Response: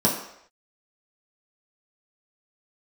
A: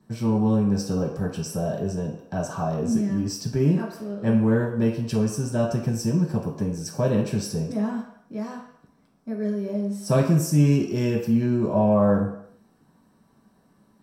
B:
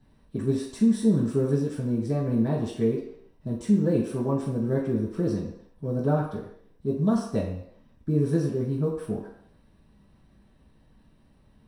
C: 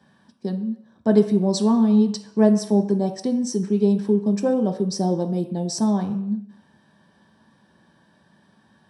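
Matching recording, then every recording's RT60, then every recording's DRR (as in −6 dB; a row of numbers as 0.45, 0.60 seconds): A; non-exponential decay, non-exponential decay, non-exponential decay; −5.0, −9.5, 4.0 decibels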